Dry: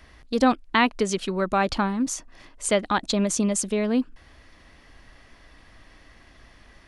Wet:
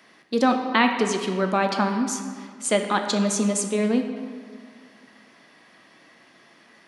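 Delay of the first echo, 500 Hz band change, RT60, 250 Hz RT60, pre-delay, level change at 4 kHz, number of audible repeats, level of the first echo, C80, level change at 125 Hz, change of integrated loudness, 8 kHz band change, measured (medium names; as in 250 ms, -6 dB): no echo, +1.5 dB, 2.0 s, 2.5 s, 5 ms, +1.0 dB, no echo, no echo, 7.5 dB, no reading, +1.0 dB, +0.5 dB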